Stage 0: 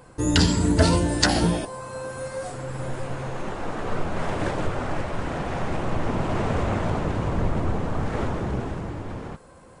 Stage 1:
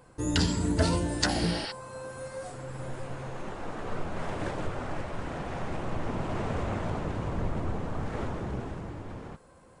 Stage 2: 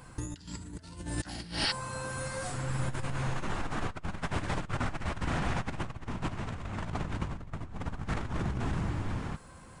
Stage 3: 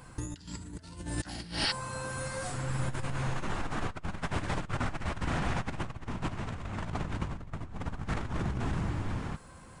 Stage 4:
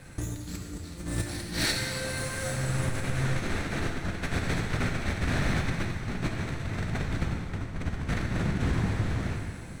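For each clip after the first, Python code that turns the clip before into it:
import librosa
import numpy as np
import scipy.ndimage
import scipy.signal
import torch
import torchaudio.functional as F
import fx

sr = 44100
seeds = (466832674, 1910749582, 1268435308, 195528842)

y1 = fx.spec_repair(x, sr, seeds[0], start_s=1.4, length_s=0.29, low_hz=830.0, high_hz=5800.0, source='before')
y1 = F.gain(torch.from_numpy(y1), -7.0).numpy()
y2 = fx.peak_eq(y1, sr, hz=490.0, db=-10.5, octaves=1.5)
y2 = fx.over_compress(y2, sr, threshold_db=-37.0, ratio=-0.5)
y2 = F.gain(torch.from_numpy(y2), 4.0).numpy()
y3 = y2
y4 = fx.lower_of_two(y3, sr, delay_ms=0.49)
y4 = fx.rev_plate(y4, sr, seeds[1], rt60_s=2.3, hf_ratio=0.95, predelay_ms=0, drr_db=1.5)
y4 = F.gain(torch.from_numpy(y4), 3.5).numpy()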